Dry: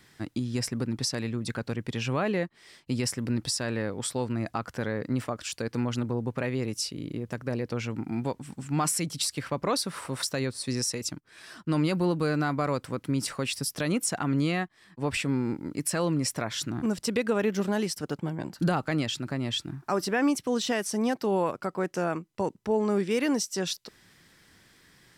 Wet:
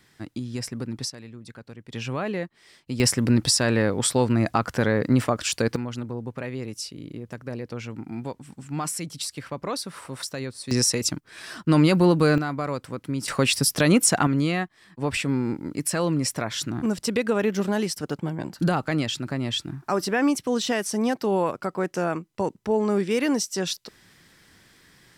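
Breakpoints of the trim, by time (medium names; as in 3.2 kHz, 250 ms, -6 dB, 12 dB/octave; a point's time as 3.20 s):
-1.5 dB
from 1.10 s -10.5 dB
from 1.92 s -1 dB
from 3.00 s +9 dB
from 5.76 s -2.5 dB
from 10.71 s +8 dB
from 12.38 s -0.5 dB
from 13.28 s +9.5 dB
from 14.27 s +3 dB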